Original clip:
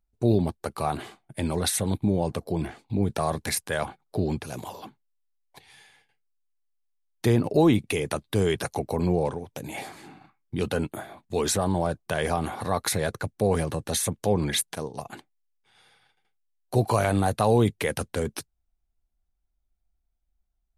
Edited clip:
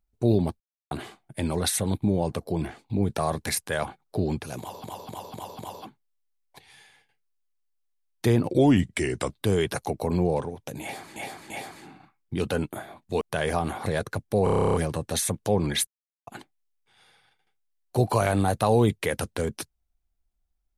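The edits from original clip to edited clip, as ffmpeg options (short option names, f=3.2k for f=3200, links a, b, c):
-filter_complex "[0:a]asplit=25[a][b][c][d][e][f][g][h][i][j][k][l][m][n][o][p][q][r][s][t][u][v][w][x][y];[a]atrim=end=0.6,asetpts=PTS-STARTPTS,afade=t=out:st=0.596:d=0.004:c=hsin[z];[b]atrim=start=0.6:end=0.91,asetpts=PTS-STARTPTS,volume=0[aa];[c]atrim=start=0.91:end=4.842,asetpts=PTS-STARTPTS,afade=t=in:d=0.004:c=hsin[ab];[d]atrim=start=4.588:end=4.842[ac];[e]atrim=start=4.588:end=4.842[ad];[f]atrim=start=4.588:end=4.842[ae];[g]atrim=start=4.588:end=7.514[af];[h]atrim=start=7.51:end=8.19,asetpts=PTS-STARTPTS,asetrate=37926,aresample=44100[ag];[i]atrim=start=8.186:end=10.052[ah];[j]atrim=start=9.708:end=10.052[ai];[k]atrim=start=9.708:end=11.422[aj];[l]atrim=start=11.978:end=12.632[ak];[m]atrim=start=12.938:end=13.552[al];[n]atrim=start=13.518:end=13.552[am];[o]atrim=start=13.518:end=13.552[an];[p]atrim=start=13.518:end=13.552[ao];[q]atrim=start=13.518:end=13.552[ap];[r]atrim=start=13.518:end=13.552[aq];[s]atrim=start=13.518:end=13.552[ar];[t]atrim=start=13.518:end=13.552[as];[u]atrim=start=13.518:end=13.552[at];[v]atrim=start=13.518:end=13.552[au];[w]atrim=start=13.518:end=14.65,asetpts=PTS-STARTPTS,afade=t=out:st=1.128:d=0.004:c=hsin[av];[x]atrim=start=14.65:end=15.05,asetpts=PTS-STARTPTS,volume=0[aw];[y]atrim=start=15.05,asetpts=PTS-STARTPTS,afade=t=in:d=0.004:c=hsin[ax];[z][aa][ab]concat=n=3:v=0:a=1[ay];[ay][ac]acrossfade=d=0.004:c1=hsin:c2=hsin[az];[az][ad]acrossfade=d=0.004:c1=hsin:c2=hsin[ba];[ba][ae]acrossfade=d=0.004:c1=hsin:c2=hsin[bb];[bb][af]acrossfade=d=0.004:c1=hsin:c2=hsin[bc];[bc][ag]acrossfade=d=0.004:c1=hsin:c2=hsin[bd];[bd][ah]acrossfade=d=0.004:c1=hsin:c2=hsin[be];[be][ai]acrossfade=d=0.004:c1=hsin:c2=hsin[bf];[bf][aj]acrossfade=d=0.004:c1=hsin:c2=hsin[bg];[bg][ak]acrossfade=d=0.004:c1=hsin:c2=hsin[bh];[bh][al]acrossfade=d=0.004:c1=hsin:c2=hsin[bi];[bi][am]acrossfade=d=0.004:c1=hsin:c2=hsin[bj];[bj][an]acrossfade=d=0.004:c1=hsin:c2=hsin[bk];[bk][ao]acrossfade=d=0.004:c1=hsin:c2=hsin[bl];[bl][ap]acrossfade=d=0.004:c1=hsin:c2=hsin[bm];[bm][aq]acrossfade=d=0.004:c1=hsin:c2=hsin[bn];[bn][ar]acrossfade=d=0.004:c1=hsin:c2=hsin[bo];[bo][as]acrossfade=d=0.004:c1=hsin:c2=hsin[bp];[bp][at]acrossfade=d=0.004:c1=hsin:c2=hsin[bq];[bq][au]acrossfade=d=0.004:c1=hsin:c2=hsin[br];[av][aw][ax]concat=n=3:v=0:a=1[bs];[br][bs]acrossfade=d=0.004:c1=hsin:c2=hsin"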